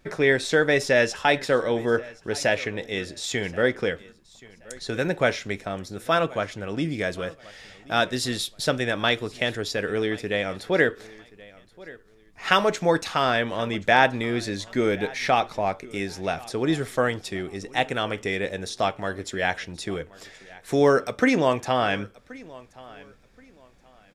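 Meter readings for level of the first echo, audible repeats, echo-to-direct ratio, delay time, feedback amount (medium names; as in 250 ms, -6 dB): -21.5 dB, 2, -21.0 dB, 1077 ms, 26%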